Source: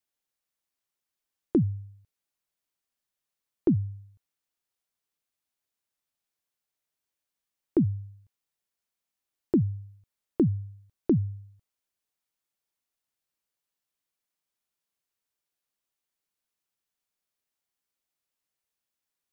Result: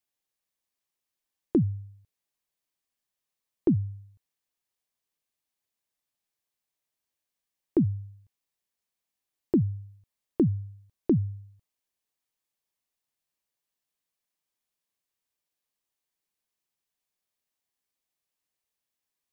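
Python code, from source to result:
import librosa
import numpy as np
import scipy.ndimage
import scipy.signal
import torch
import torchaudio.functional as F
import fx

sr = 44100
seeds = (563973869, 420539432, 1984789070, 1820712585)

y = fx.notch(x, sr, hz=1400.0, q=9.5)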